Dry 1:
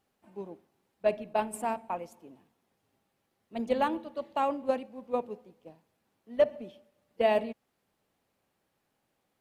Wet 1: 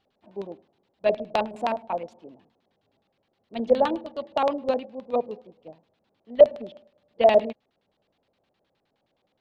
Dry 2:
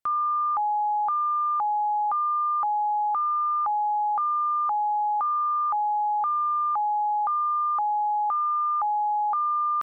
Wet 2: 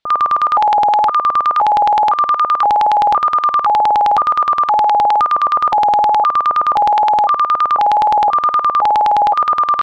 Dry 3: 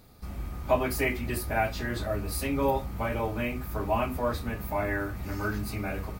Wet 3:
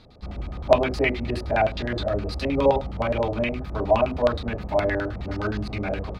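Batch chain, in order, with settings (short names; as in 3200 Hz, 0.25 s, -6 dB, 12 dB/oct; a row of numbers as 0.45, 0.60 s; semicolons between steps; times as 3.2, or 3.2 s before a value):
wow and flutter 16 cents; LFO low-pass square 9.6 Hz 620–3800 Hz; normalise peaks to -3 dBFS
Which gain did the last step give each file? +3.0, +12.5, +3.5 dB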